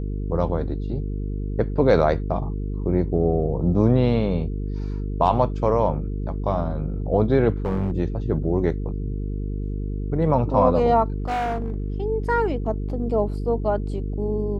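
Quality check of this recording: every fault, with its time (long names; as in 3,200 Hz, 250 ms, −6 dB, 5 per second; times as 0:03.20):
mains buzz 50 Hz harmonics 9 −27 dBFS
0:07.65–0:07.96: clipping −18.5 dBFS
0:11.18–0:11.96: clipping −21.5 dBFS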